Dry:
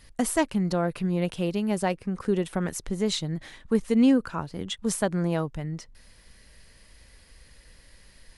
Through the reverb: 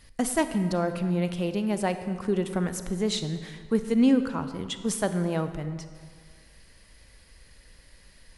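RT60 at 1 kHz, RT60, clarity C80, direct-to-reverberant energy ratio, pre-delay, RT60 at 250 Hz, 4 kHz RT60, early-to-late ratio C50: 1.9 s, 1.9 s, 11.5 dB, 9.5 dB, 31 ms, 1.8 s, 1.3 s, 10.0 dB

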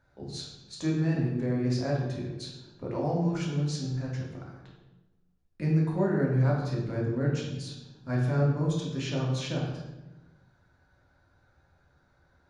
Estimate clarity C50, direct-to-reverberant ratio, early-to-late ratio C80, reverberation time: 2.0 dB, −4.0 dB, 4.5 dB, 1.1 s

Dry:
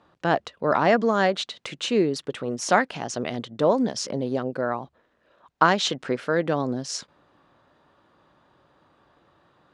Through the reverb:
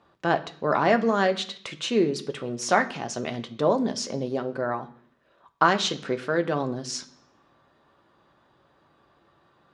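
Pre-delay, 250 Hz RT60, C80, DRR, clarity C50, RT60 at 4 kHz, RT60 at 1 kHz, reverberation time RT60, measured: 3 ms, 0.80 s, 19.0 dB, 6.0 dB, 15.5 dB, 0.70 s, 0.55 s, 0.60 s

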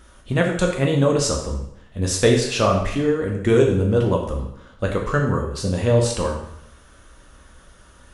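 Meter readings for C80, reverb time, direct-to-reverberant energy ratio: 8.0 dB, 0.70 s, 0.0 dB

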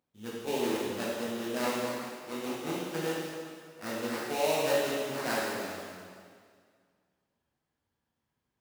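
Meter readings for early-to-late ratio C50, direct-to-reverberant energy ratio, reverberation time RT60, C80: −2.0 dB, −7.0 dB, 2.0 s, 0.0 dB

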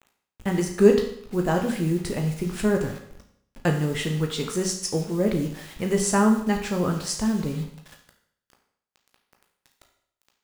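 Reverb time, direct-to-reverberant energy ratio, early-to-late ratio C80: 0.65 s, 2.0 dB, 10.0 dB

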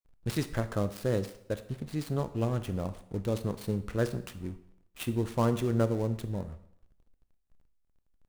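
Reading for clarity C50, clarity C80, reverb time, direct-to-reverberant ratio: 13.5 dB, 16.0 dB, 0.70 s, 10.5 dB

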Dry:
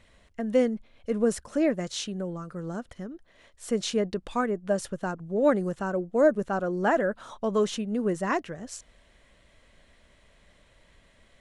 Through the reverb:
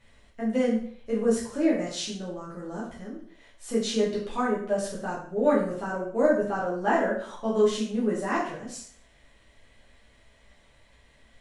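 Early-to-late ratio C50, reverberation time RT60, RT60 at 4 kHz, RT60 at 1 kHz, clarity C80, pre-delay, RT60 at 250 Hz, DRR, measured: 4.5 dB, 0.55 s, 0.50 s, 0.50 s, 8.5 dB, 4 ms, 0.55 s, −7.0 dB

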